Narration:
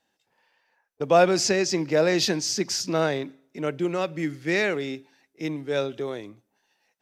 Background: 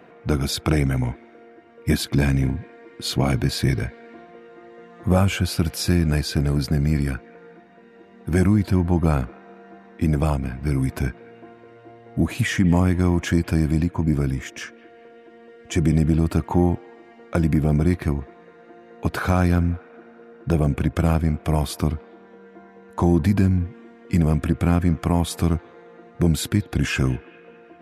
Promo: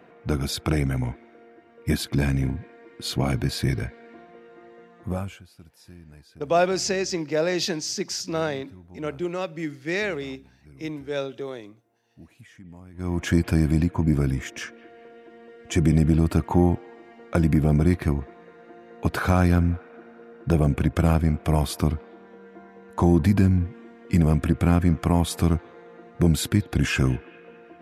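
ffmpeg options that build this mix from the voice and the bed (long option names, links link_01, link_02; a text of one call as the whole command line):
ffmpeg -i stem1.wav -i stem2.wav -filter_complex "[0:a]adelay=5400,volume=-2.5dB[link_01];[1:a]volume=23.5dB,afade=type=out:start_time=4.7:duration=0.73:silence=0.0630957,afade=type=in:start_time=12.93:duration=0.41:silence=0.0446684[link_02];[link_01][link_02]amix=inputs=2:normalize=0" out.wav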